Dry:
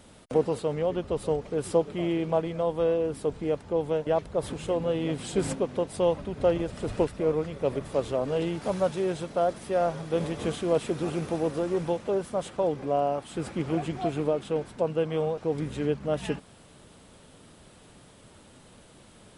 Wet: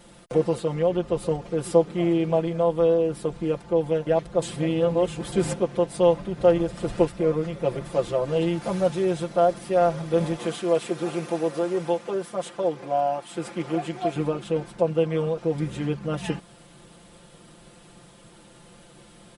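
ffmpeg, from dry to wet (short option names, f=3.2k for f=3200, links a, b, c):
-filter_complex "[0:a]asettb=1/sr,asplit=3[a][b][c];[a]atrim=end=10.364[d];[b]atrim=start=10.36:end=14.16,asetpts=PTS-STARTPTS,afade=t=in:d=0.004:c=qsin,afade=t=out:st=3.796:d=0.004:c=qsin,highpass=f=340:p=1[e];[c]atrim=start=14.156[f];[d][e]acrossfade=d=0.004:c1=hsin:c2=qsin[g];[g][f]acrossfade=d=0.004:c1=qsin:c2=hsin,asplit=3[h][i][j];[h]atrim=end=4.422[k];[i]atrim=start=4.418:end=5.322,asetpts=PTS-STARTPTS,areverse[l];[j]atrim=start=5.318[m];[k][l]acrossfade=d=0.004:c1=hsin:c2=hsin[n];[n][m]acrossfade=d=0.004:c1=hsin:c2=hsin,aecho=1:1:5.8:0.97"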